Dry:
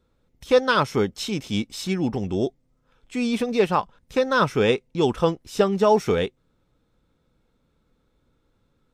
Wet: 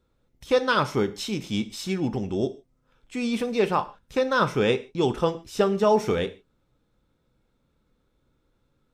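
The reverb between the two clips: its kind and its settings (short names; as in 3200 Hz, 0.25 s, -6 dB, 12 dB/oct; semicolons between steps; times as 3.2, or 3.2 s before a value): non-linear reverb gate 0.17 s falling, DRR 10.5 dB; gain -2.5 dB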